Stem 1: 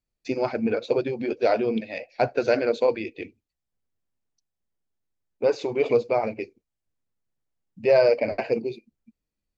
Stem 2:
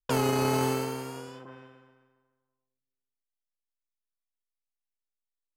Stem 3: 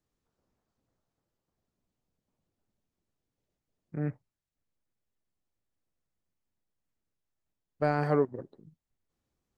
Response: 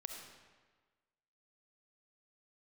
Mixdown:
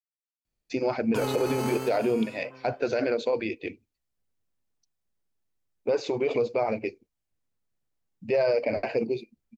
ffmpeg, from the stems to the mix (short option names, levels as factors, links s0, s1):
-filter_complex "[0:a]adelay=450,volume=1.12[s0];[1:a]adelay=1050,volume=0.668[s1];[s0][s1]amix=inputs=2:normalize=0,alimiter=limit=0.15:level=0:latency=1:release=53"